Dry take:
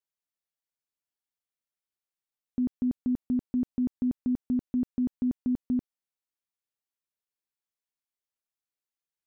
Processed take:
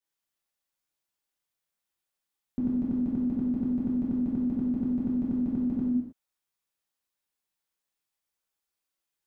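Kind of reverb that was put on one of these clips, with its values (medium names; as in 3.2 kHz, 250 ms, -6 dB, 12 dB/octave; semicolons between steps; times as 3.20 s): gated-style reverb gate 340 ms falling, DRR -7.5 dB; trim -1.5 dB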